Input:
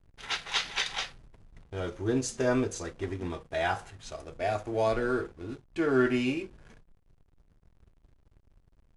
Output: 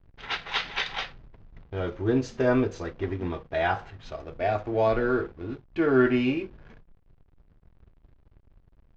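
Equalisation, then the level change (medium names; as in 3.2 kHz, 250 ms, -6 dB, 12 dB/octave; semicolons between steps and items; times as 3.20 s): low-pass 6.4 kHz 12 dB/octave; distance through air 190 m; +4.5 dB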